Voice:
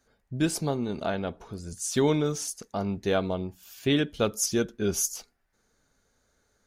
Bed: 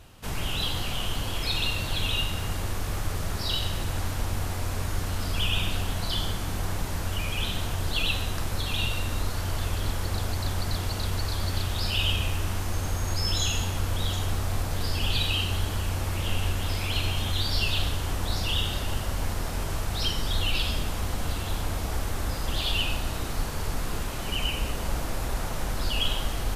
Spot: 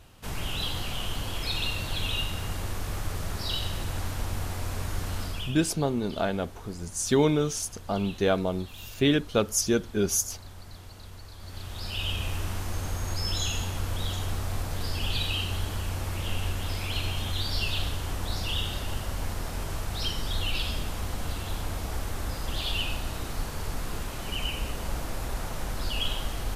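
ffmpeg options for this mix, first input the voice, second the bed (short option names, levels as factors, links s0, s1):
-filter_complex "[0:a]adelay=5150,volume=1.19[s0];[1:a]volume=3.55,afade=t=out:st=5.19:d=0.38:silence=0.199526,afade=t=in:st=11.38:d=0.99:silence=0.211349[s1];[s0][s1]amix=inputs=2:normalize=0"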